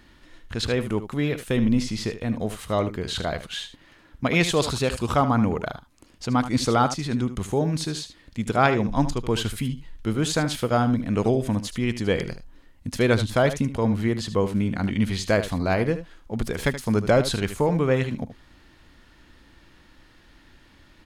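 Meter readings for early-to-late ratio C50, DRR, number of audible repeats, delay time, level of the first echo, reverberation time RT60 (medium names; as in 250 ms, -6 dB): no reverb, no reverb, 1, 76 ms, -12.0 dB, no reverb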